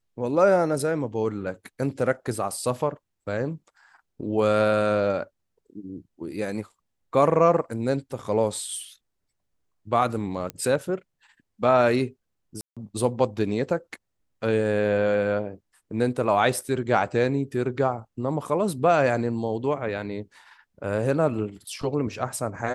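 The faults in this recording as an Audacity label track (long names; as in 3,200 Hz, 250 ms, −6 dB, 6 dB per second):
10.500000	10.500000	click −16 dBFS
12.610000	12.770000	drop-out 156 ms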